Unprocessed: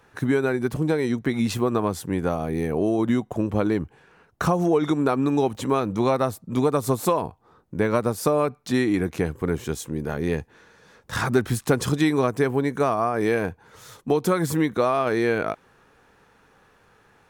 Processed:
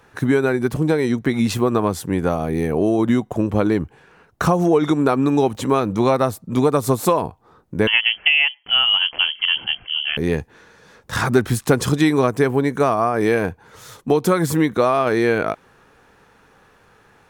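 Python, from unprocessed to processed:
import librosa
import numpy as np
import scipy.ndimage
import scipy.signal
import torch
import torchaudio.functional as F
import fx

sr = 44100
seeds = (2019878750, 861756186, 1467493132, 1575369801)

y = fx.freq_invert(x, sr, carrier_hz=3200, at=(7.87, 10.17))
y = F.gain(torch.from_numpy(y), 4.5).numpy()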